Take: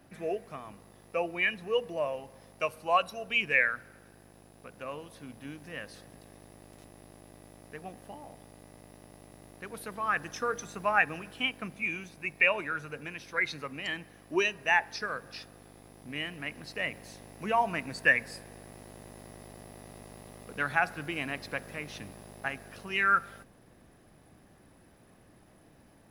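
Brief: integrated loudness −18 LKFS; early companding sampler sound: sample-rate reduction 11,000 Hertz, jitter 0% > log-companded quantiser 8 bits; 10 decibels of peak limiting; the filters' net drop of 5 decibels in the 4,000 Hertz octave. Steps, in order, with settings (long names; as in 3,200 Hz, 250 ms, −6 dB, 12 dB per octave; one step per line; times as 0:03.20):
parametric band 4,000 Hz −8.5 dB
brickwall limiter −21.5 dBFS
sample-rate reduction 11,000 Hz, jitter 0%
log-companded quantiser 8 bits
level +18 dB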